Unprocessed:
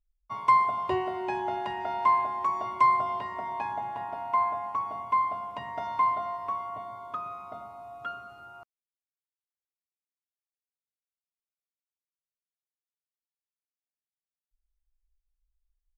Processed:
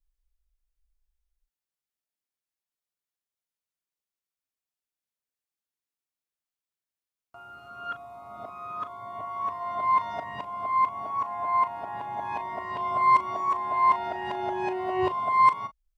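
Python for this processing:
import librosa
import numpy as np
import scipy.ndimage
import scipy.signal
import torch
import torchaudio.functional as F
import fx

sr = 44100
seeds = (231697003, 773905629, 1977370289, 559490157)

y = np.flip(x).copy()
y = fx.doubler(y, sr, ms=38.0, db=-12.0)
y = y * librosa.db_to_amplitude(1.5)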